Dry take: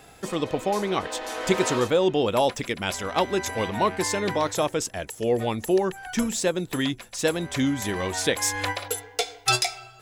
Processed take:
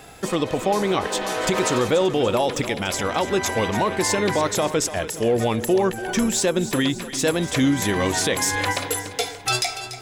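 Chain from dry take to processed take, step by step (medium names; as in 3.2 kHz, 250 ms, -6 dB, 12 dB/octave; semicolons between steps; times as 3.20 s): peak limiter -17.5 dBFS, peak gain reduction 9.5 dB; on a send: two-band feedback delay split 350 Hz, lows 394 ms, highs 289 ms, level -12.5 dB; on the sum: trim +6 dB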